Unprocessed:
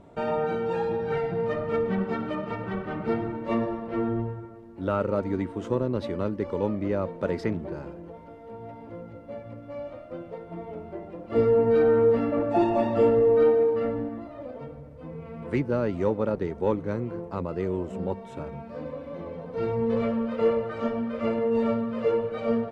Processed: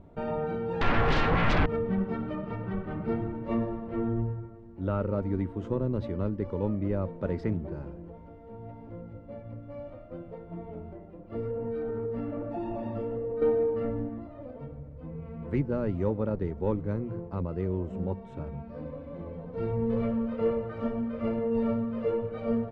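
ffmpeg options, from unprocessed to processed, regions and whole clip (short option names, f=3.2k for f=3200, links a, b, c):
-filter_complex "[0:a]asettb=1/sr,asplit=3[a][b][c];[a]atrim=end=0.814[d];[b]atrim=start=0.81:end=1.66,asetpts=PTS-STARTPTS,afade=t=in:d=0.004:c=qsin,afade=t=out:st=0.846:d=0.004:c=qsin,acrossover=split=2900[e][f];[f]acompressor=threshold=-59dB:ratio=4:attack=1:release=60[g];[e][g]amix=inputs=2:normalize=0,aeval=exprs='0.133*sin(PI/2*5.62*val(0)/0.133)':c=same[h];[c]atrim=start=1.656[i];[d][h]acrossfade=d=0.004:c1=hsin:c2=qsin[j];[j][i]acrossfade=d=0.004:c1=qsin:c2=hsin,asettb=1/sr,asplit=3[k][l][m];[k]atrim=end=10.934[n];[l]atrim=start=10.93:end=13.42,asetpts=PTS-STARTPTS,afade=t=in:d=0.004:c=qsin,afade=t=out:st=2.486:d=0.004:c=qsin,flanger=delay=3.8:depth=8.1:regen=-70:speed=1.2:shape=sinusoidal,acompressor=threshold=-26dB:ratio=4:attack=3.2:release=140:knee=1:detection=peak[o];[m]atrim=start=13.416[p];[n][o]acrossfade=d=0.004:c1=hsin:c2=qsin[q];[q][p]acrossfade=d=0.004:c1=qsin:c2=hsin,aemphasis=mode=reproduction:type=bsi,bandreject=f=60:t=h:w=6,bandreject=f=120:t=h:w=6,volume=-6.5dB"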